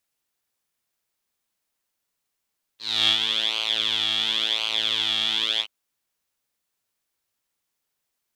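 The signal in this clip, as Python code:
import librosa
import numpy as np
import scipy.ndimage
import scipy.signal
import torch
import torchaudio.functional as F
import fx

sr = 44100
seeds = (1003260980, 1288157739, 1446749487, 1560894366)

y = fx.sub_patch_pwm(sr, seeds[0], note=45, wave2='saw', interval_st=0, detune_cents=16, level2_db=-9.0, sub_db=-15.0, noise_db=-27.5, kind='bandpass', cutoff_hz=3000.0, q=12.0, env_oct=0.5, env_decay_s=0.27, env_sustain_pct=35, attack_ms=285.0, decay_s=0.1, sustain_db=-6, release_s=0.07, note_s=2.81, lfo_hz=0.94, width_pct=14, width_swing_pct=8)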